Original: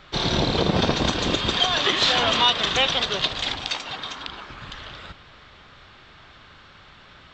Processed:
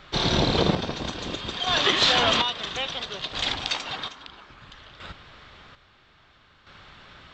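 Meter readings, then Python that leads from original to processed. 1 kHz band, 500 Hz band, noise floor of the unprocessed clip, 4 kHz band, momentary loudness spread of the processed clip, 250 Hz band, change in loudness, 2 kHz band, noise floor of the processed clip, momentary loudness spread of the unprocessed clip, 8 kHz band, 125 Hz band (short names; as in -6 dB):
-3.0 dB, -2.5 dB, -49 dBFS, -3.0 dB, 21 LU, -2.5 dB, -2.5 dB, -2.5 dB, -58 dBFS, 19 LU, -2.5 dB, -2.0 dB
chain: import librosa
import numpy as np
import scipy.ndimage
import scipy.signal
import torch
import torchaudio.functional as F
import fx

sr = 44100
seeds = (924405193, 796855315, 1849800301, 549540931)

y = fx.chopper(x, sr, hz=0.6, depth_pct=65, duty_pct=45)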